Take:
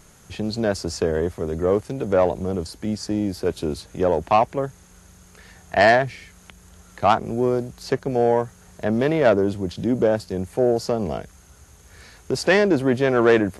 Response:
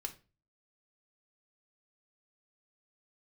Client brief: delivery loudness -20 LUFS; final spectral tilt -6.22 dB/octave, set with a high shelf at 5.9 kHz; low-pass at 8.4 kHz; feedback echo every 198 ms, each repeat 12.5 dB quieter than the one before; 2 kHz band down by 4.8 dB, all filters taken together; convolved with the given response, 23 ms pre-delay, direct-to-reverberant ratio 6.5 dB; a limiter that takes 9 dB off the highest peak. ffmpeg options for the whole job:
-filter_complex "[0:a]lowpass=8400,equalizer=f=2000:t=o:g=-5.5,highshelf=f=5900:g=-4,alimiter=limit=0.2:level=0:latency=1,aecho=1:1:198|396|594:0.237|0.0569|0.0137,asplit=2[s0][s1];[1:a]atrim=start_sample=2205,adelay=23[s2];[s1][s2]afir=irnorm=-1:irlink=0,volume=0.562[s3];[s0][s3]amix=inputs=2:normalize=0,volume=1.68"

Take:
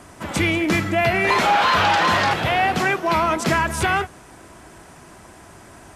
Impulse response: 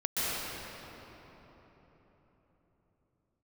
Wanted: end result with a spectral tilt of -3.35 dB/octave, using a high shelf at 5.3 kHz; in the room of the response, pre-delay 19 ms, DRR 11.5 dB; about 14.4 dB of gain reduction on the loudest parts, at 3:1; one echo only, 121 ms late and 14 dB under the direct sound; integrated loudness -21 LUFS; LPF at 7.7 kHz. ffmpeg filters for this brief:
-filter_complex "[0:a]lowpass=7700,highshelf=f=5300:g=-7.5,acompressor=threshold=0.0178:ratio=3,aecho=1:1:121:0.2,asplit=2[s0][s1];[1:a]atrim=start_sample=2205,adelay=19[s2];[s1][s2]afir=irnorm=-1:irlink=0,volume=0.0841[s3];[s0][s3]amix=inputs=2:normalize=0,volume=3.98"

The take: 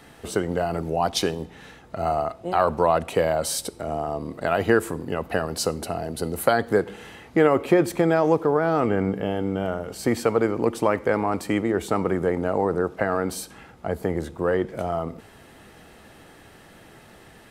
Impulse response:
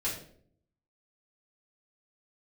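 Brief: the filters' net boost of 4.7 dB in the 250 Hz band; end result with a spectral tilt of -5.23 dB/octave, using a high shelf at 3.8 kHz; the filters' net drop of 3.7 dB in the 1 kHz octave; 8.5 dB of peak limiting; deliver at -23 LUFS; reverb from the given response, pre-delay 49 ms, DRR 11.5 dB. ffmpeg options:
-filter_complex "[0:a]equalizer=f=250:t=o:g=7,equalizer=f=1000:t=o:g=-6.5,highshelf=f=3800:g=5,alimiter=limit=0.237:level=0:latency=1,asplit=2[s0][s1];[1:a]atrim=start_sample=2205,adelay=49[s2];[s1][s2]afir=irnorm=-1:irlink=0,volume=0.15[s3];[s0][s3]amix=inputs=2:normalize=0,volume=1.19"

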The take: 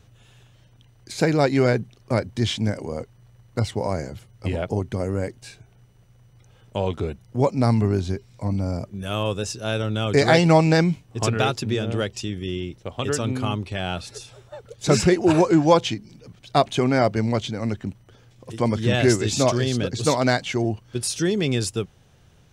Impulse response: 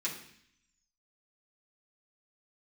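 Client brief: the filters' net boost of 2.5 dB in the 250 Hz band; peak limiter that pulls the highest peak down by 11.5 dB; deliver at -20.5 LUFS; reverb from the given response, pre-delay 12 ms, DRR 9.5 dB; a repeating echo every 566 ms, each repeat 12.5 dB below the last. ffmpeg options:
-filter_complex "[0:a]equalizer=f=250:t=o:g=3.5,alimiter=limit=0.224:level=0:latency=1,aecho=1:1:566|1132|1698:0.237|0.0569|0.0137,asplit=2[s0][s1];[1:a]atrim=start_sample=2205,adelay=12[s2];[s1][s2]afir=irnorm=-1:irlink=0,volume=0.224[s3];[s0][s3]amix=inputs=2:normalize=0,volume=1.58"

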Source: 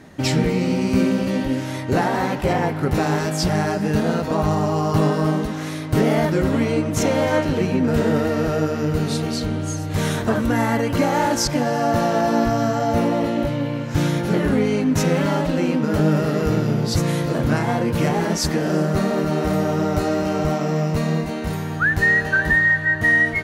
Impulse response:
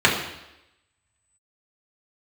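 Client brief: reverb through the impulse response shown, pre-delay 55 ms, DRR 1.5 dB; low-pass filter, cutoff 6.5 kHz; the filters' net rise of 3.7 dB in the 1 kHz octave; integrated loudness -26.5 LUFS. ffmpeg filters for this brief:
-filter_complex "[0:a]lowpass=6500,equalizer=f=1000:t=o:g=5,asplit=2[s0][s1];[1:a]atrim=start_sample=2205,adelay=55[s2];[s1][s2]afir=irnorm=-1:irlink=0,volume=0.0668[s3];[s0][s3]amix=inputs=2:normalize=0,volume=0.355"

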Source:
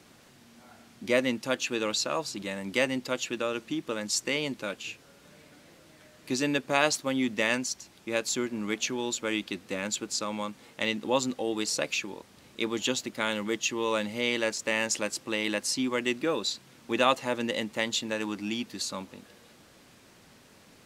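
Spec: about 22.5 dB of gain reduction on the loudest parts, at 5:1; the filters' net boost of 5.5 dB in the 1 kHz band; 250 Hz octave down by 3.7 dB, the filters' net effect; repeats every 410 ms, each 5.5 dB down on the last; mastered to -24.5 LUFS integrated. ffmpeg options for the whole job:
-af "equalizer=f=250:t=o:g=-5,equalizer=f=1000:t=o:g=7,acompressor=threshold=0.01:ratio=5,aecho=1:1:410|820|1230|1640|2050|2460|2870:0.531|0.281|0.149|0.079|0.0419|0.0222|0.0118,volume=7.5"

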